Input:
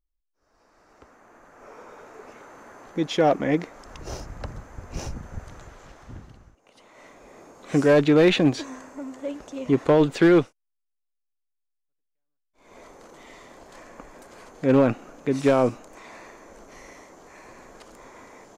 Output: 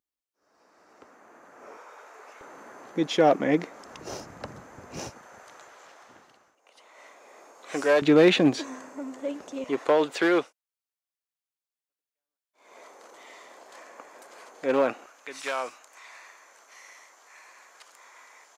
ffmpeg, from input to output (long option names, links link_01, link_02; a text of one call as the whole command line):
ffmpeg -i in.wav -af "asetnsamples=nb_out_samples=441:pad=0,asendcmd='1.77 highpass f 670;2.41 highpass f 180;5.1 highpass f 570;8.02 highpass f 190;9.64 highpass f 500;15.06 highpass f 1200',highpass=200" out.wav